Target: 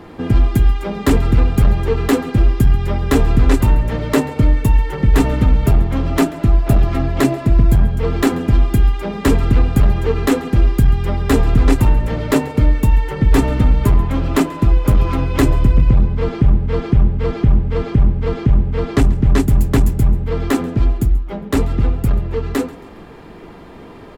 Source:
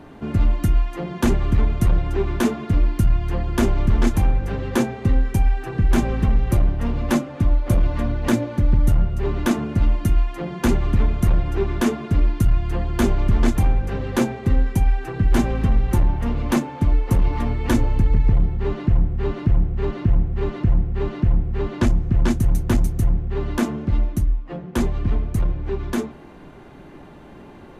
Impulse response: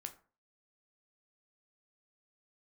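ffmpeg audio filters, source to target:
-af "aecho=1:1:157|314|471:0.0841|0.0345|0.0141,asetrate=50715,aresample=44100,volume=5dB"

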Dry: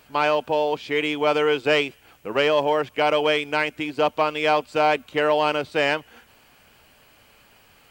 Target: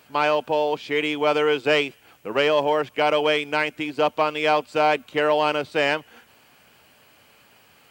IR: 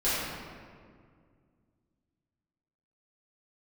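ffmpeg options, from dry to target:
-af "highpass=97"

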